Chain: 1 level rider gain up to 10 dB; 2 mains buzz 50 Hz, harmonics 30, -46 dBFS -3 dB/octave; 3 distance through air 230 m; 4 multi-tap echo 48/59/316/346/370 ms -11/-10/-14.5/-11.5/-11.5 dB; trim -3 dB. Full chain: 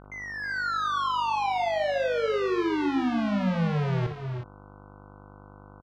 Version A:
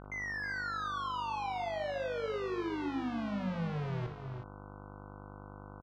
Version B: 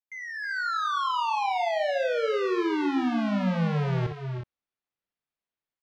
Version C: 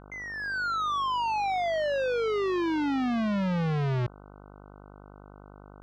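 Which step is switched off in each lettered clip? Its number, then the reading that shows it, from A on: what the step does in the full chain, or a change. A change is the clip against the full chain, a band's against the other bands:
1, momentary loudness spread change +5 LU; 2, momentary loudness spread change -2 LU; 4, echo-to-direct -4.5 dB to none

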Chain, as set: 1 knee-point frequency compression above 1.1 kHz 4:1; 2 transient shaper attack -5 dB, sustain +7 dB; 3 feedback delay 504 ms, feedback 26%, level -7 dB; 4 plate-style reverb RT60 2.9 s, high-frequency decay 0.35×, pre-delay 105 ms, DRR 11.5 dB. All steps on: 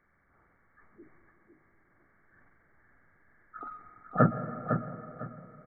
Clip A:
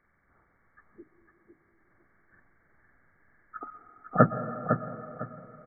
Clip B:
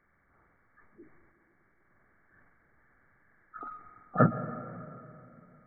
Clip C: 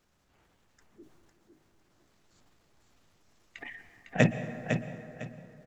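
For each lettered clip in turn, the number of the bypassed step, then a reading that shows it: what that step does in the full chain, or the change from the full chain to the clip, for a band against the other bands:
2, crest factor change +2.0 dB; 3, echo-to-direct -5.5 dB to -11.5 dB; 1, 1 kHz band -8.5 dB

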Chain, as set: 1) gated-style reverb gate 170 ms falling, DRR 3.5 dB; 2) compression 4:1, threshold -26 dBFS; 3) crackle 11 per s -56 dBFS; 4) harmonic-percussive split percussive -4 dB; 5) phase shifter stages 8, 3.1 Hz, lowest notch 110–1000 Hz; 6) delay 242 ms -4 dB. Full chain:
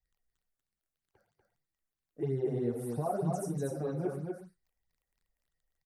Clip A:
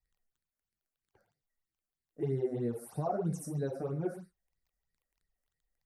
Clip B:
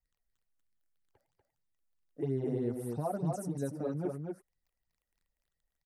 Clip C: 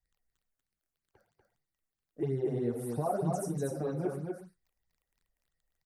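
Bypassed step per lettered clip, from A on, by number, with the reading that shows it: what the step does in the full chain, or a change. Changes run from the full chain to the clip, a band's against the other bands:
6, momentary loudness spread change -2 LU; 1, 250 Hz band +2.5 dB; 4, 8 kHz band +1.5 dB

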